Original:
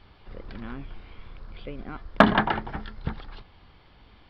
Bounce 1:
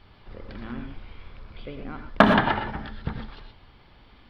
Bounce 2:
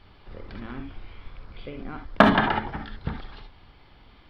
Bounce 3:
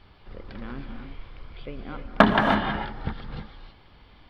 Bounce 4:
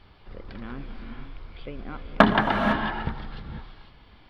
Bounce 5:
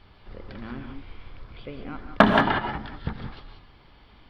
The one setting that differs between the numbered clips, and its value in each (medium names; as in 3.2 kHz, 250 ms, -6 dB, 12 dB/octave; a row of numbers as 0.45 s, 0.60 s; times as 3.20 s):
gated-style reverb, gate: 140 ms, 90 ms, 350 ms, 530 ms, 210 ms